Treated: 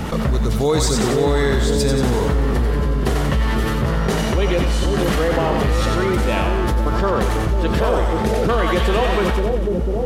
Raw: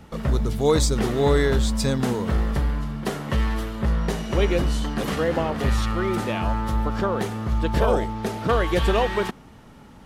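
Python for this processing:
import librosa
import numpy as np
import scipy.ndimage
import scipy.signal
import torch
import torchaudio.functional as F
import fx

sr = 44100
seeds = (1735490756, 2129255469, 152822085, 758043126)

p1 = x + fx.echo_split(x, sr, split_hz=580.0, low_ms=497, high_ms=92, feedback_pct=52, wet_db=-4.5, dry=0)
y = fx.env_flatten(p1, sr, amount_pct=70)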